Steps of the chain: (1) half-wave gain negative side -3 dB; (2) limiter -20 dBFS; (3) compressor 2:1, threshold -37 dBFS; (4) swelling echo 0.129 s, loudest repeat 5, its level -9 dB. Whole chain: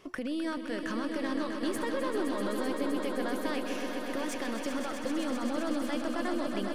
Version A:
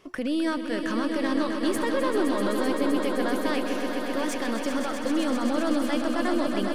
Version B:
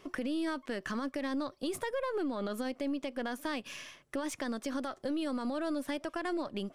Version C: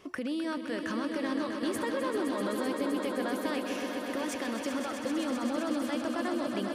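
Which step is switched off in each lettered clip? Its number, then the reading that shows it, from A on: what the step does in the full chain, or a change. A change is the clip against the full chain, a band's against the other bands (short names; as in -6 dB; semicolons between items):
3, mean gain reduction 5.5 dB; 4, echo-to-direct 0.5 dB to none; 1, distortion -15 dB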